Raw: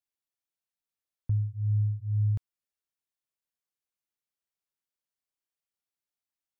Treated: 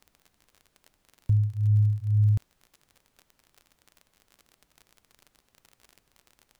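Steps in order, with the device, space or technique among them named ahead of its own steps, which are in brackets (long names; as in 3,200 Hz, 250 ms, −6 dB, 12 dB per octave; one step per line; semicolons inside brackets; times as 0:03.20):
record under a worn stylus (stylus tracing distortion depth 0.46 ms; surface crackle 41 per second −43 dBFS; pink noise bed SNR 42 dB)
level +5 dB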